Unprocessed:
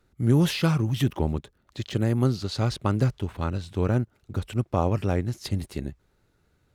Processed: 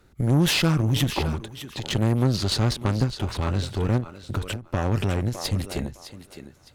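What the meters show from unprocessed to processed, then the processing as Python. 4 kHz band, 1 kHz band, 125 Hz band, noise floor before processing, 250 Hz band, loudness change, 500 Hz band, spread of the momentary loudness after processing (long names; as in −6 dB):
+8.0 dB, +1.0 dB, +1.5 dB, −68 dBFS, +0.5 dB, +1.5 dB, −0.5 dB, 12 LU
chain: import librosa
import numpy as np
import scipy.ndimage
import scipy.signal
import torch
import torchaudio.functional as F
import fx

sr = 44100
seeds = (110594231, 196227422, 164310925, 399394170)

p1 = fx.over_compress(x, sr, threshold_db=-31.0, ratio=-1.0)
p2 = x + (p1 * librosa.db_to_amplitude(-1.0))
p3 = fx.echo_thinned(p2, sr, ms=609, feedback_pct=19, hz=360.0, wet_db=-10.5)
p4 = fx.tube_stage(p3, sr, drive_db=18.0, bias=0.7)
p5 = fx.end_taper(p4, sr, db_per_s=180.0)
y = p5 * librosa.db_to_amplitude(4.0)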